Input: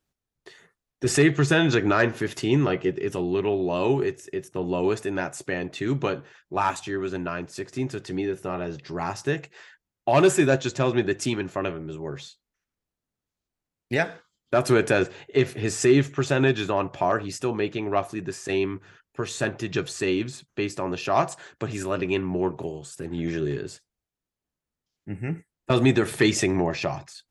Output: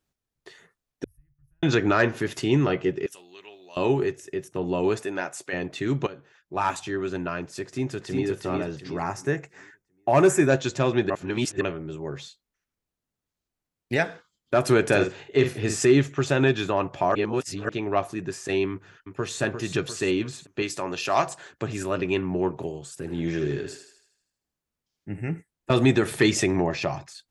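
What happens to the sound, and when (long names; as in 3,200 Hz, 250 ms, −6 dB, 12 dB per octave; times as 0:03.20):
0:01.04–0:01.63: inverse Chebyshev band-stop filter 180–7,900 Hz, stop band 60 dB
0:03.06–0:03.77: first difference
0:04.99–0:05.52: high-pass filter 230 Hz → 880 Hz 6 dB per octave
0:06.07–0:06.76: fade in, from −16 dB
0:07.65–0:08.26: delay throw 360 ms, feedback 35%, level −2.5 dB
0:09.02–0:10.50: flat-topped bell 3,600 Hz −9.5 dB 1 octave
0:11.10–0:11.61: reverse
0:14.85–0:15.85: double-tracking delay 49 ms −7.5 dB
0:17.15–0:17.69: reverse
0:18.71–0:19.41: delay throw 350 ms, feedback 55%, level −7 dB
0:20.62–0:21.27: spectral tilt +2 dB per octave
0:22.99–0:25.23: feedback echo with a high-pass in the loop 79 ms, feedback 53%, level −6.5 dB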